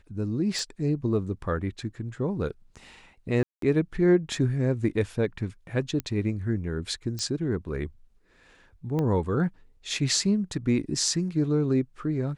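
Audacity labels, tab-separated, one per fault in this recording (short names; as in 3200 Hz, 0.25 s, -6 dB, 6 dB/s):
0.590000	0.590000	pop
3.430000	3.620000	gap 0.193 s
6.000000	6.000000	pop -16 dBFS
7.190000	7.190000	pop -19 dBFS
8.990000	8.990000	pop -18 dBFS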